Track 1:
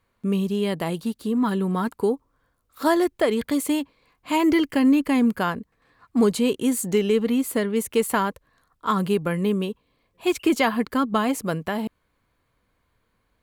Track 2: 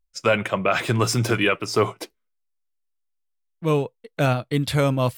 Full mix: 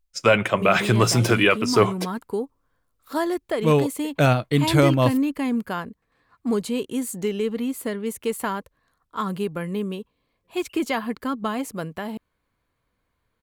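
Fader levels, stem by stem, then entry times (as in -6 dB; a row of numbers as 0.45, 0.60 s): -4.5, +2.5 dB; 0.30, 0.00 s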